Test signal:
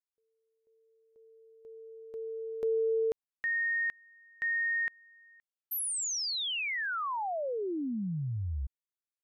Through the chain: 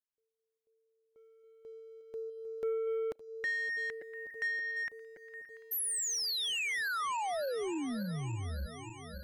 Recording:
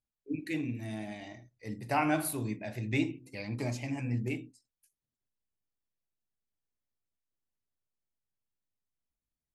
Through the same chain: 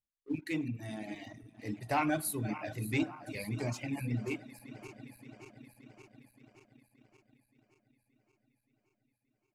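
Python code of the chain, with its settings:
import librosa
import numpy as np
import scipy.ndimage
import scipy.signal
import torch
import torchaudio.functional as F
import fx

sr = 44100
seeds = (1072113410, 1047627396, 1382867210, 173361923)

y = fx.reverse_delay_fb(x, sr, ms=287, feedback_pct=82, wet_db=-14.0)
y = fx.leveller(y, sr, passes=1)
y = fx.dereverb_blind(y, sr, rt60_s=0.94)
y = y * 10.0 ** (-3.5 / 20.0)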